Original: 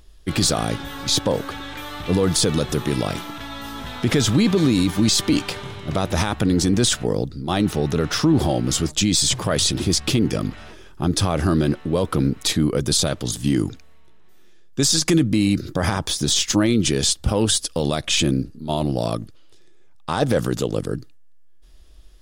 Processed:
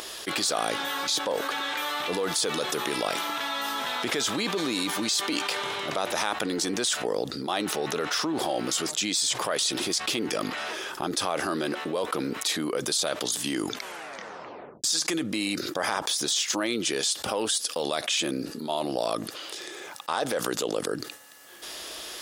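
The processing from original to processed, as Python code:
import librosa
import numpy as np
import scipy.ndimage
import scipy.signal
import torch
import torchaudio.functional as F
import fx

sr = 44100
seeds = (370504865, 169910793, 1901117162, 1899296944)

y = fx.edit(x, sr, fx.tape_stop(start_s=13.69, length_s=1.15), tone=tone)
y = scipy.signal.sosfilt(scipy.signal.butter(2, 520.0, 'highpass', fs=sr, output='sos'), y)
y = fx.env_flatten(y, sr, amount_pct=70)
y = y * librosa.db_to_amplitude(-7.5)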